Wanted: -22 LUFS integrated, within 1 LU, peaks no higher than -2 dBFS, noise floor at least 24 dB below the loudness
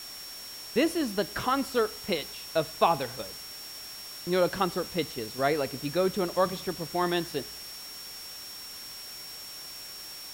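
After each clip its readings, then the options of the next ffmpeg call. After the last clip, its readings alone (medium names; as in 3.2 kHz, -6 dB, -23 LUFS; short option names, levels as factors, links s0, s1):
steady tone 5.5 kHz; tone level -42 dBFS; noise floor -43 dBFS; noise floor target -55 dBFS; loudness -31.0 LUFS; peak level -8.5 dBFS; loudness target -22.0 LUFS
-> -af "bandreject=f=5500:w=30"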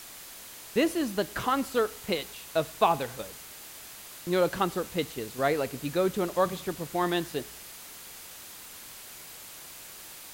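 steady tone not found; noise floor -46 dBFS; noise floor target -54 dBFS
-> -af "afftdn=nr=8:nf=-46"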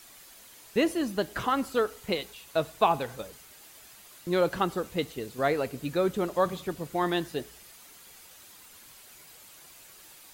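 noise floor -52 dBFS; noise floor target -54 dBFS
-> -af "afftdn=nr=6:nf=-52"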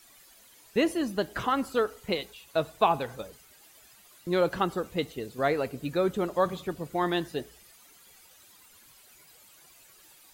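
noise floor -57 dBFS; loudness -29.5 LUFS; peak level -8.5 dBFS; loudness target -22.0 LUFS
-> -af "volume=2.37,alimiter=limit=0.794:level=0:latency=1"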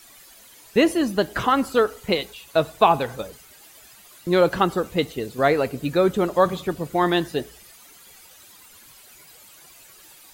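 loudness -22.0 LUFS; peak level -2.0 dBFS; noise floor -49 dBFS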